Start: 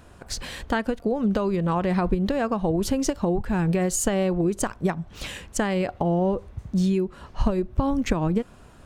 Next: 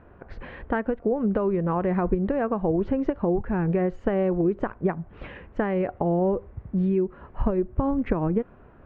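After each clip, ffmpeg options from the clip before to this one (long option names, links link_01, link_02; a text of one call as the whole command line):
ffmpeg -i in.wav -af "lowpass=frequency=2100:width=0.5412,lowpass=frequency=2100:width=1.3066,equalizer=frequency=410:width_type=o:width=0.98:gain=4.5,volume=-2.5dB" out.wav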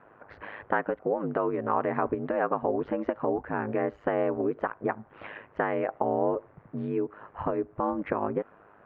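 ffmpeg -i in.wav -af "aeval=exprs='val(0)*sin(2*PI*52*n/s)':channel_layout=same,bandpass=frequency=1200:width_type=q:width=0.71:csg=0,volume=5.5dB" out.wav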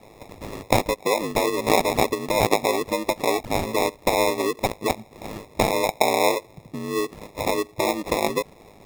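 ffmpeg -i in.wav -filter_complex "[0:a]acrossover=split=370[link_01][link_02];[link_01]acompressor=threshold=-41dB:ratio=6[link_03];[link_02]acrusher=samples=29:mix=1:aa=0.000001[link_04];[link_03][link_04]amix=inputs=2:normalize=0,volume=8dB" out.wav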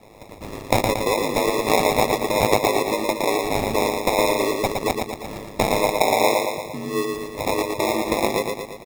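ffmpeg -i in.wav -af "aecho=1:1:115|230|345|460|575|690|805|920:0.631|0.353|0.198|0.111|0.0621|0.0347|0.0195|0.0109" out.wav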